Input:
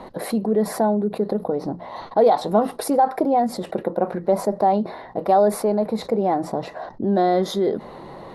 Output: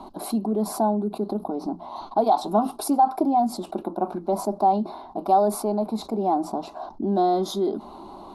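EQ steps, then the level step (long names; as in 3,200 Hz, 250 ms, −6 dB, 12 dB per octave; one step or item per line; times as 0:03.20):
phaser with its sweep stopped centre 500 Hz, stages 6
0.0 dB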